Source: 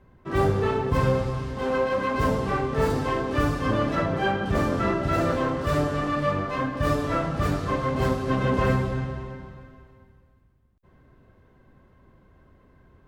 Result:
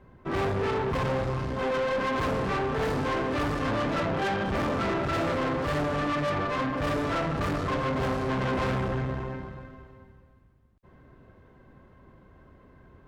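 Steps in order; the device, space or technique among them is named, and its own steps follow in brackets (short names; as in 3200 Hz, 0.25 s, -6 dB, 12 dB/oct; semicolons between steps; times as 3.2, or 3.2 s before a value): tube preamp driven hard (tube stage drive 31 dB, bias 0.6; low shelf 150 Hz -3 dB; high shelf 4600 Hz -7.5 dB); gain +6.5 dB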